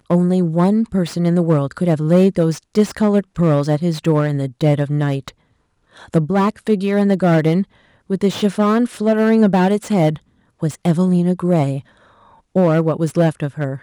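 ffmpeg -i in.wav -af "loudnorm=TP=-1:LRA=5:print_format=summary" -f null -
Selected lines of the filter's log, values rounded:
Input Integrated:    -17.1 LUFS
Input True Peak:      -2.1 dBTP
Input LRA:             2.2 LU
Input Threshold:     -27.6 LUFS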